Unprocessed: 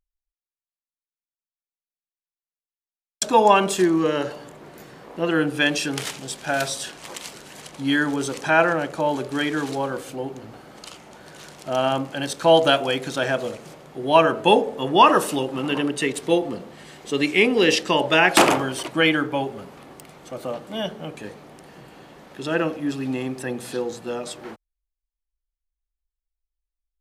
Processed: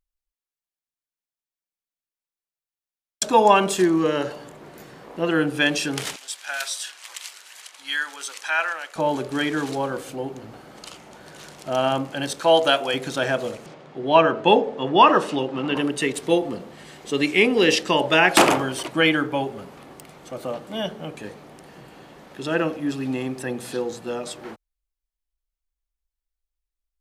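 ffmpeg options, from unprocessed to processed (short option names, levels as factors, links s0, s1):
-filter_complex "[0:a]asettb=1/sr,asplit=3[s0][s1][s2];[s0]atrim=end=6.164[s3];[s1]atrim=start=6.16:end=8.96,asetpts=PTS-STARTPTS,afade=t=in:d=0.004:c=qsin,afade=t=out:st=2.796:d=0.004:c=qsin,highpass=1400[s4];[s2]atrim=start=8.956[s5];[s3][s4]acrossfade=d=0.004:c1=hsin:c2=qsin[s6];[s6][s5]acrossfade=d=0.004:c1=qsin:c2=hsin,asettb=1/sr,asplit=3[s7][s8][s9];[s7]atrim=end=12.414[s10];[s8]atrim=start=12.41:end=12.94,asetpts=PTS-STARTPTS,afade=t=in:d=0.004:c=qsin,afade=t=out:st=0.526:d=0.004:c=qsin,highpass=f=390:p=1[s11];[s9]atrim=start=12.936[s12];[s10][s11]acrossfade=d=0.004:c1=hsin:c2=qsin[s13];[s13][s12]acrossfade=d=0.004:c1=qsin:c2=hsin,asettb=1/sr,asplit=3[s14][s15][s16];[s14]atrim=end=13.664[s17];[s15]atrim=start=13.66:end=15.76,asetpts=PTS-STARTPTS,afade=t=in:d=0.004:c=qsin,afade=t=out:st=2.096:d=0.004:c=qsin,highpass=100,lowpass=4600[s18];[s16]atrim=start=15.756[s19];[s17][s18]acrossfade=d=0.004:c1=hsin:c2=qsin[s20];[s20][s19]acrossfade=d=0.004:c1=qsin:c2=hsin"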